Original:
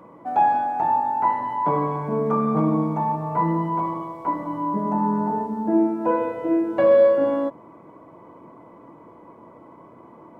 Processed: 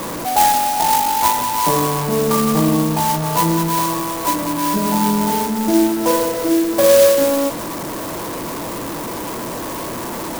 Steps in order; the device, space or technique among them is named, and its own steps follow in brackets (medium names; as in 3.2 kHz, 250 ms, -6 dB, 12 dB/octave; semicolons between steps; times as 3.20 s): early CD player with a faulty converter (jump at every zero crossing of -24 dBFS; sampling jitter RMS 0.086 ms); trim +3 dB